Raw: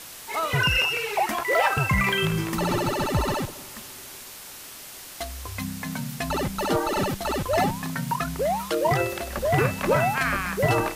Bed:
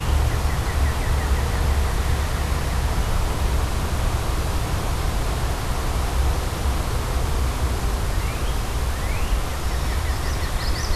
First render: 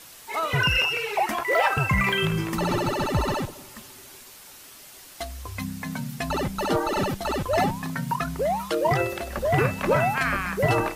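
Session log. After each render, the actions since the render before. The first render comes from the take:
broadband denoise 6 dB, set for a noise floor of −42 dBFS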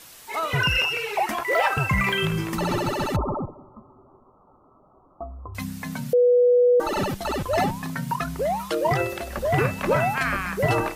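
0:03.16–0:05.55: Chebyshev low-pass filter 1,300 Hz, order 8
0:06.13–0:06.80: beep over 490 Hz −13.5 dBFS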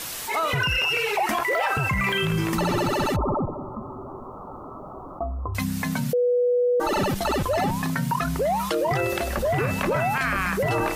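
brickwall limiter −17.5 dBFS, peak gain reduction 7.5 dB
envelope flattener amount 50%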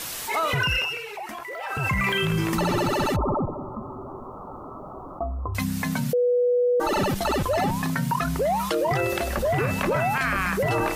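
0:00.76–0:01.87: duck −11.5 dB, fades 0.34 s quadratic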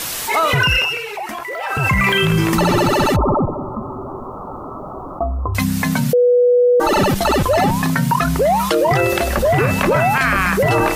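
level +8.5 dB

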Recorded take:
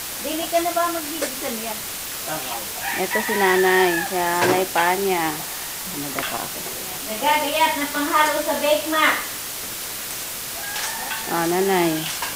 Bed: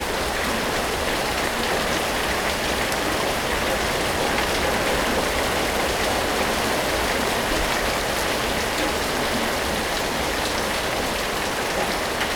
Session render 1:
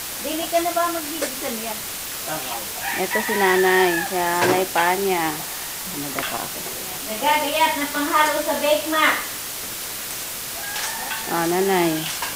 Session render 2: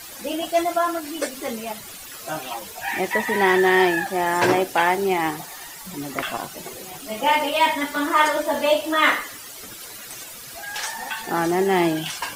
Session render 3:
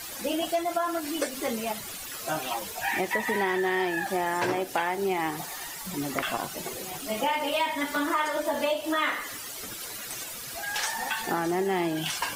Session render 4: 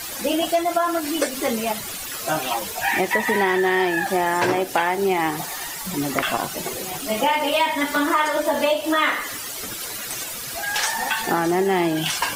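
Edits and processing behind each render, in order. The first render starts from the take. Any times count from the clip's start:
no processing that can be heard
broadband denoise 13 dB, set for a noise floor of −31 dBFS
downward compressor, threshold −24 dBFS, peak gain reduction 11.5 dB
level +7 dB

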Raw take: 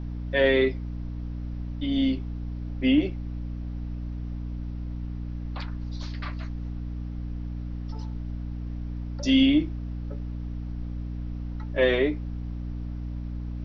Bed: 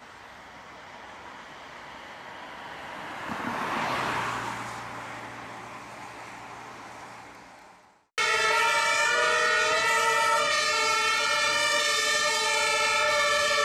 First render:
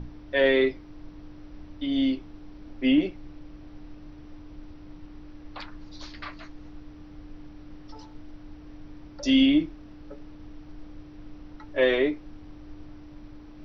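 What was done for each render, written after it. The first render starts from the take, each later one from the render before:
mains-hum notches 60/120/180/240 Hz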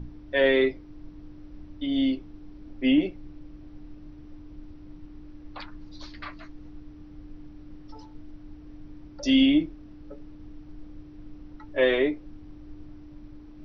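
broadband denoise 6 dB, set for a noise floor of −46 dBFS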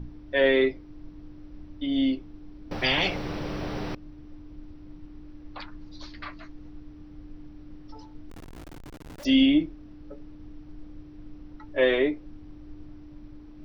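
0:02.71–0:03.95: every bin compressed towards the loudest bin 10 to 1
0:08.30–0:09.25: comparator with hysteresis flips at −49.5 dBFS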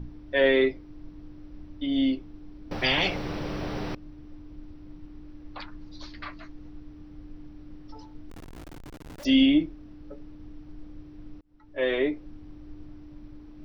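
0:11.41–0:12.17: fade in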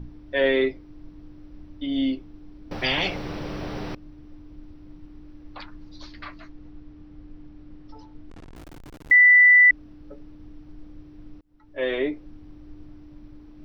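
0:06.49–0:08.56: high-frequency loss of the air 71 metres
0:09.11–0:09.71: beep over 1,980 Hz −10 dBFS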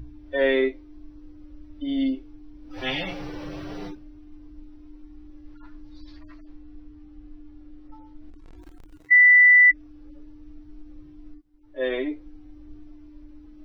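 harmonic-percussive split with one part muted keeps harmonic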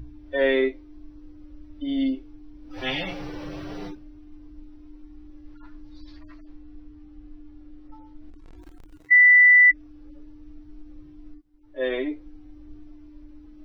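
no processing that can be heard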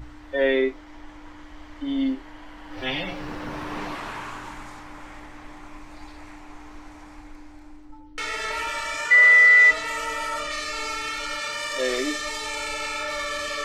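mix in bed −5.5 dB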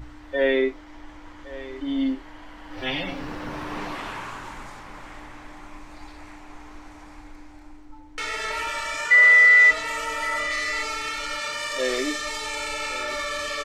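single-tap delay 1,115 ms −16.5 dB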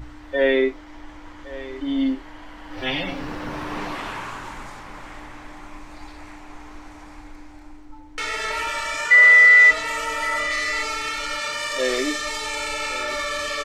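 level +2.5 dB

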